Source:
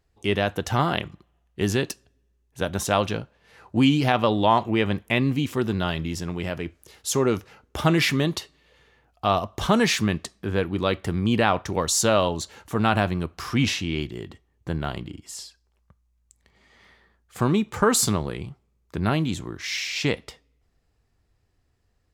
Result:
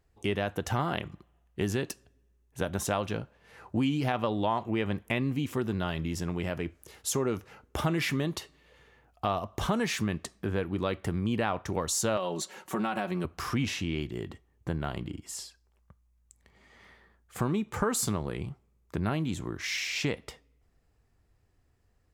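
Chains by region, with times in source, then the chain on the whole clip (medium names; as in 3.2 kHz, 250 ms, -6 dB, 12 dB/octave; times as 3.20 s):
12.17–13.25 s: high-pass 220 Hz + comb 5.4 ms, depth 70% + compression 2.5:1, threshold -21 dBFS
whole clip: peaking EQ 4.2 kHz -4.5 dB 1.2 oct; compression 2.5:1, threshold -29 dBFS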